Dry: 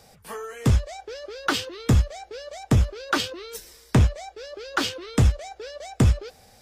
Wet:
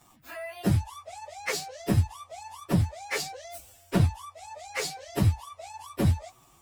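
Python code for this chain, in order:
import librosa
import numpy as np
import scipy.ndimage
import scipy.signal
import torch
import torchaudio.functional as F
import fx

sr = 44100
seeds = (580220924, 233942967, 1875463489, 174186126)

y = fx.pitch_bins(x, sr, semitones=7.0)
y = y * librosa.db_to_amplitude(-1.5)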